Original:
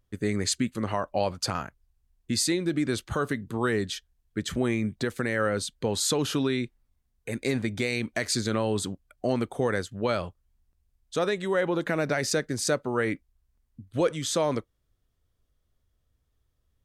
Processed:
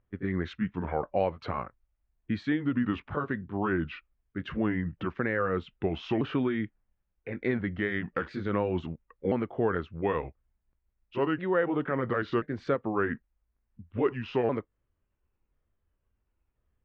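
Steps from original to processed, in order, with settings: repeated pitch sweeps -5 st, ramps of 1.035 s; LPF 2400 Hz 24 dB/oct; low shelf 150 Hz -3.5 dB

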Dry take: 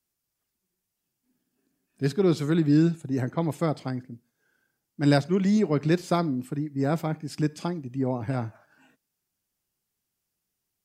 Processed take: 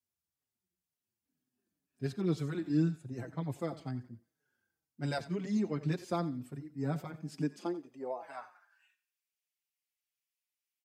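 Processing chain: high-pass sweep 78 Hz -> 2300 Hz, 6.81–8.9; thinning echo 89 ms, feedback 36%, high-pass 370 Hz, level -15.5 dB; endless flanger 5 ms -2 Hz; gain -8.5 dB

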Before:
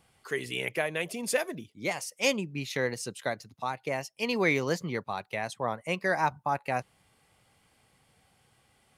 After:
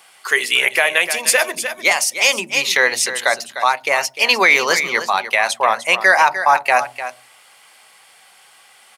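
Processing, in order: HPF 910 Hz 12 dB/oct; echo 0.301 s -12 dB; on a send at -16 dB: reverb RT60 0.40 s, pre-delay 3 ms; on the sum: maximiser +21 dB; gain -1 dB

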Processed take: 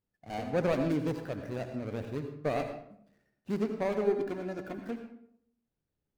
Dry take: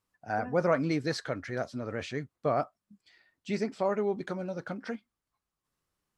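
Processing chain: median filter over 41 samples; 4.04–4.78 comb 2.9 ms, depth 57%; on a send: reverb RT60 0.70 s, pre-delay 71 ms, DRR 6.5 dB

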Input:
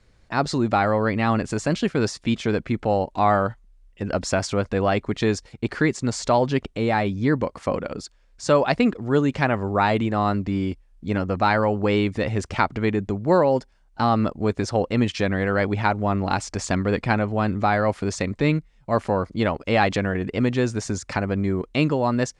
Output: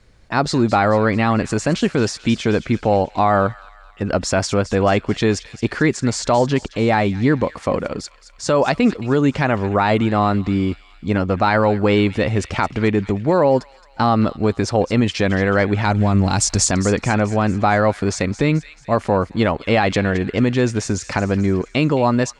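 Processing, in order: 15.85–16.69 tone controls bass +8 dB, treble +13 dB; limiter -11.5 dBFS, peak gain reduction 7 dB; thin delay 0.219 s, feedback 52%, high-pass 2000 Hz, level -13 dB; gain +5.5 dB

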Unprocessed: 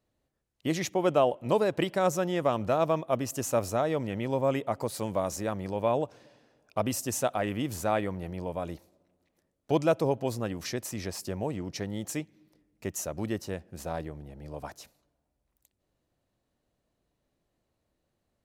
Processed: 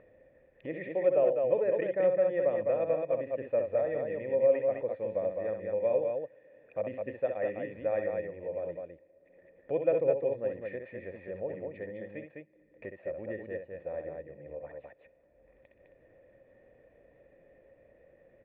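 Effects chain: vocal tract filter e; loudspeakers at several distances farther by 22 m -7 dB, 71 m -4 dB; upward compressor, threshold -45 dBFS; gain +4.5 dB

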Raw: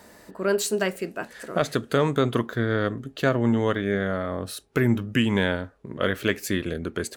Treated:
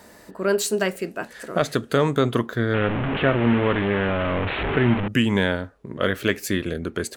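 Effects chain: 2.74–5.08 delta modulation 16 kbps, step -20 dBFS; gain +2 dB

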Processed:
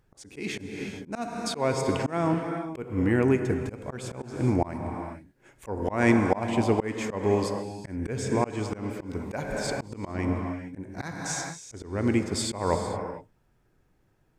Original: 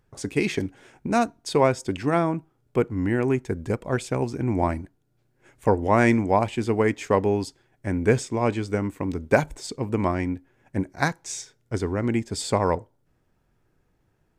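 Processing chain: non-linear reverb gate 0.48 s flat, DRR 7.5 dB; auto swell 0.239 s

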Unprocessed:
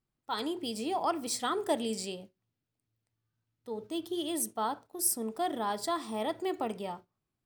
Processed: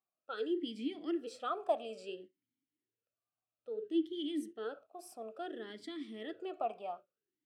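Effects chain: vowel sweep a-i 0.59 Hz; gain +5.5 dB

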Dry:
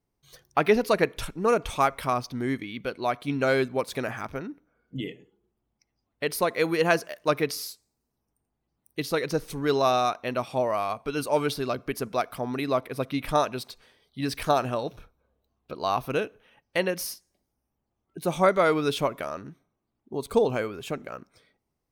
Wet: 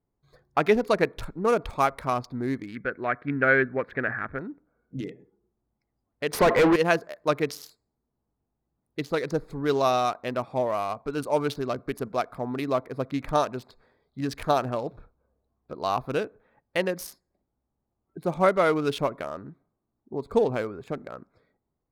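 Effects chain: Wiener smoothing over 15 samples; 2.75–4.39 EQ curve 490 Hz 0 dB, 950 Hz -5 dB, 1700 Hz +14 dB, 2900 Hz -5 dB, 7500 Hz -29 dB, 16000 Hz -20 dB; 6.33–6.76 overdrive pedal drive 32 dB, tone 1700 Hz, clips at -11 dBFS

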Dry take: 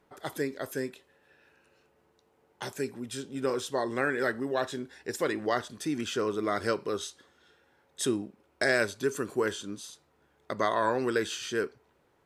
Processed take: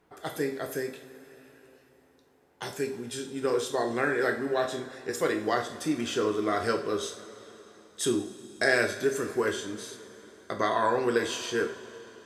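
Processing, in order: two-slope reverb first 0.42 s, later 3.9 s, from -18 dB, DRR 2.5 dB

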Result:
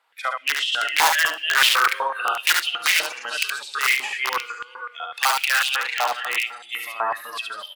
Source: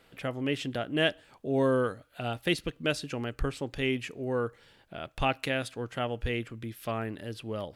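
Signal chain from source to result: regenerating reverse delay 0.226 s, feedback 54%, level -4.5 dB; spectral noise reduction 18 dB; 5.68–6.56 bell 11000 Hz -13 dB 0.82 oct; in parallel at -2 dB: compressor 16:1, threshold -35 dBFS, peak gain reduction 16 dB; on the sum: wrapped overs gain 18.5 dB; on a send: echo 71 ms -4 dB; on the sum: digital reverb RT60 1.8 s, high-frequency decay 0.35×, pre-delay 20 ms, DRR 14.5 dB; stepped high-pass 8 Hz 930–3000 Hz; gain +4.5 dB

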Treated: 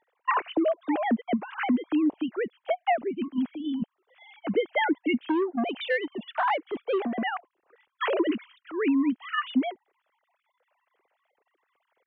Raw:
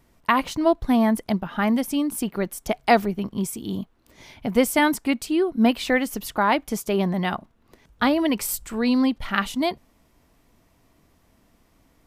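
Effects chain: sine-wave speech; compressor 20:1, threshold -20 dBFS, peak gain reduction 11.5 dB; 5.2–7.22 core saturation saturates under 640 Hz

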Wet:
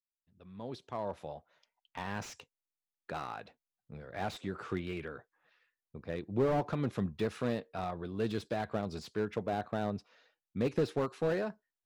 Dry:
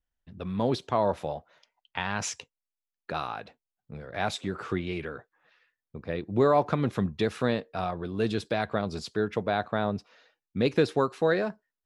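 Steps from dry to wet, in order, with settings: opening faded in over 2.12 s; slew limiter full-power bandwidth 51 Hz; gain -6 dB

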